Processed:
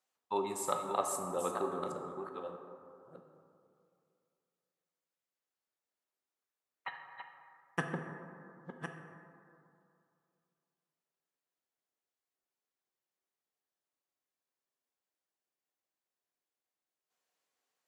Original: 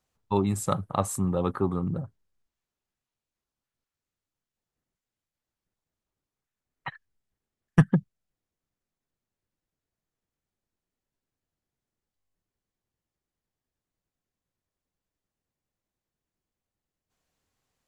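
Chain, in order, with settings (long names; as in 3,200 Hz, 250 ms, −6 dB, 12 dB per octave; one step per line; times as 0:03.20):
delay that plays each chunk backwards 640 ms, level −8 dB
high-pass filter 450 Hz 12 dB per octave
dense smooth reverb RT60 2.5 s, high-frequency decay 0.35×, DRR 3.5 dB
level −5.5 dB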